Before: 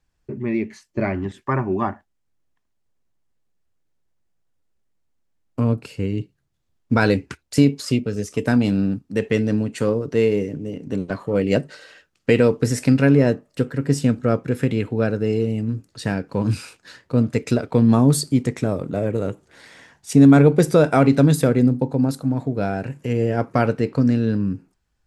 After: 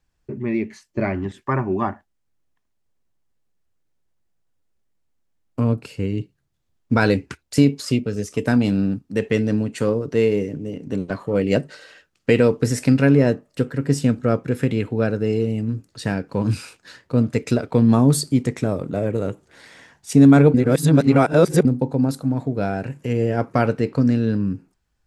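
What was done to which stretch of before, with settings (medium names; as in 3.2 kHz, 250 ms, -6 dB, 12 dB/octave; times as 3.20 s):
20.54–21.65 s: reverse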